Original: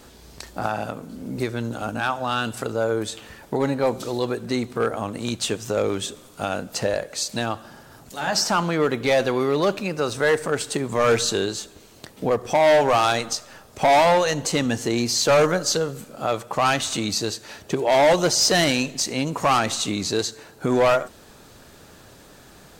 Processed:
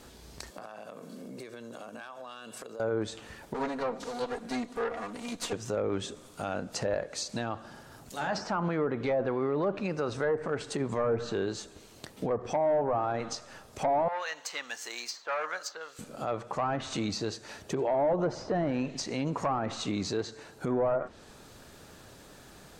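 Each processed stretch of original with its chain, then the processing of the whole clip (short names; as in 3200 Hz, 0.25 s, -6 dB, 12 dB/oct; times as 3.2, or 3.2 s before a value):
0.5–2.8 HPF 180 Hz 24 dB/oct + comb 1.8 ms, depth 43% + compressor 16:1, threshold -35 dBFS
3.54–5.53 minimum comb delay 4.2 ms + low shelf 150 Hz -11 dB
14.08–15.99 HPF 1300 Hz + careless resampling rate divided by 2×, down filtered, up zero stuff
whole clip: treble ducked by the level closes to 890 Hz, closed at -14.5 dBFS; dynamic EQ 3300 Hz, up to -5 dB, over -44 dBFS, Q 1.1; limiter -17.5 dBFS; gain -4 dB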